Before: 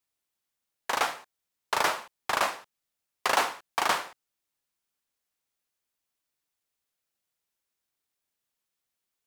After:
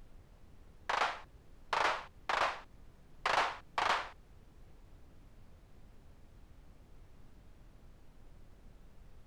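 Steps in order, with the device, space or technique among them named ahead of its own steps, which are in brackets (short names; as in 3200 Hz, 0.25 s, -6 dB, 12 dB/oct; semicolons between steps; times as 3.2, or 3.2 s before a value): aircraft cabin announcement (BPF 400–4000 Hz; soft clip -20 dBFS, distortion -14 dB; brown noise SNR 14 dB); gain -3 dB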